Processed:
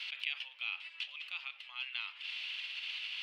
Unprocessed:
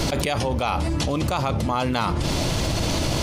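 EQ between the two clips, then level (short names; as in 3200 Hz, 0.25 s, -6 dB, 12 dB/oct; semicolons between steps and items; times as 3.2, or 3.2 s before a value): ladder high-pass 2500 Hz, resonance 65%; air absorption 440 m; +4.0 dB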